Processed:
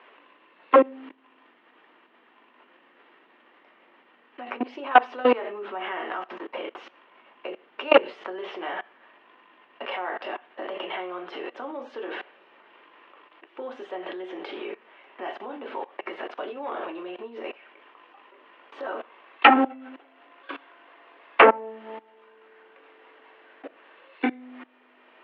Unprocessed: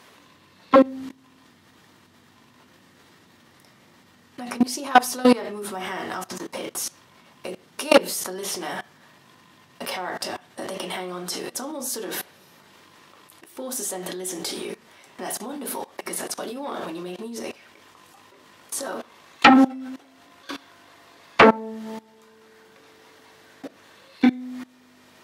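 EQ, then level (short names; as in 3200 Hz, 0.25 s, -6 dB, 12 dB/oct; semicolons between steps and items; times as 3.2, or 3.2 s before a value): HPF 320 Hz 24 dB/oct; Chebyshev low-pass 2900 Hz, order 4; 0.0 dB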